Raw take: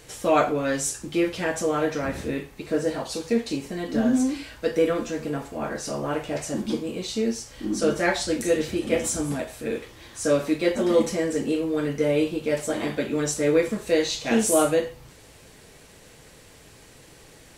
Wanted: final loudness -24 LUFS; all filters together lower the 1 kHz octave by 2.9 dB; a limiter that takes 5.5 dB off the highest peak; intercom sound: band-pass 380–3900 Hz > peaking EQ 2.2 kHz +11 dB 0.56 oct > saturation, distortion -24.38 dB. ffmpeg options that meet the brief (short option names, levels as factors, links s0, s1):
-af "equalizer=f=1000:t=o:g=-5,alimiter=limit=0.188:level=0:latency=1,highpass=380,lowpass=3900,equalizer=f=2200:t=o:w=0.56:g=11,asoftclip=threshold=0.211,volume=1.78"